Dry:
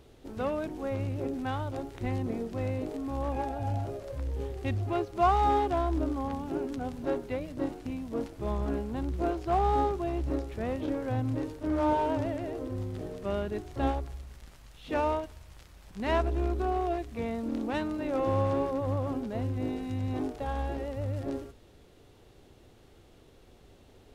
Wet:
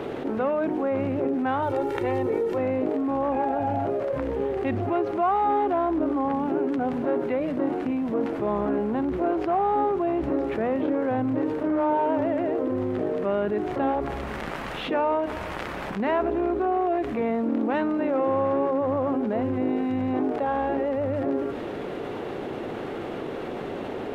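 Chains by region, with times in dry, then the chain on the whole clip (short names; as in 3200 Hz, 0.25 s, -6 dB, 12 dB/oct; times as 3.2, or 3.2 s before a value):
1.62–2.58 high shelf 5700 Hz +10.5 dB + comb 2.2 ms, depth 77%
whole clip: three-band isolator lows -24 dB, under 160 Hz, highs -21 dB, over 2500 Hz; notches 60/120/180/240/300 Hz; fast leveller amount 70%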